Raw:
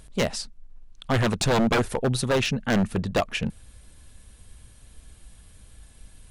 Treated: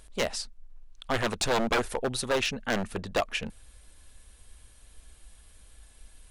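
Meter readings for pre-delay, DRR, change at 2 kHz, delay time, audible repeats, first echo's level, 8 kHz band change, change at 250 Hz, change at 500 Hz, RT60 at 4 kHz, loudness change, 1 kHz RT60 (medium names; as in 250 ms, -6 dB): no reverb, no reverb, -2.0 dB, no echo, no echo, no echo, -2.0 dB, -9.0 dB, -4.0 dB, no reverb, -4.5 dB, no reverb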